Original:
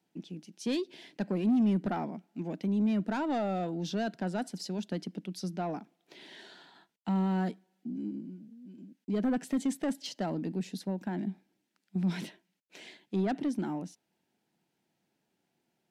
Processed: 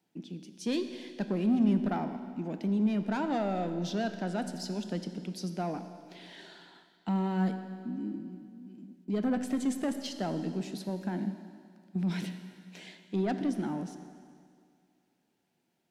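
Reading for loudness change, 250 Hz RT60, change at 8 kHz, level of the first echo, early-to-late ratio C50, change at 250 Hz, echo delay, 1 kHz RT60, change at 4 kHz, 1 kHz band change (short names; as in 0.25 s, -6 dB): +0.5 dB, 2.2 s, +0.5 dB, none, 9.5 dB, +0.5 dB, none, 2.2 s, +0.5 dB, +0.5 dB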